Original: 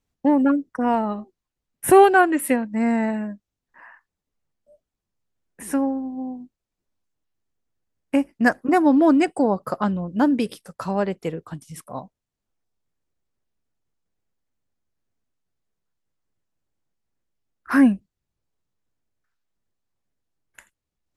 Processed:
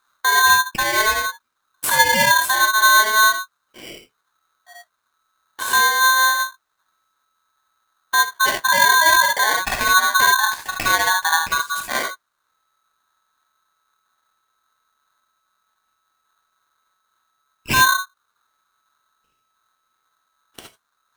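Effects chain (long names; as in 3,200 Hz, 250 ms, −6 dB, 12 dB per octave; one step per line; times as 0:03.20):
parametric band 250 Hz +10.5 dB 2.2 octaves
downward compressor, threshold −17 dBFS, peak gain reduction 15.5 dB
brickwall limiter −17.5 dBFS, peak gain reduction 11.5 dB
reverb whose tail is shaped and stops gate 90 ms rising, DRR 1 dB
ring modulator with a square carrier 1,300 Hz
level +6 dB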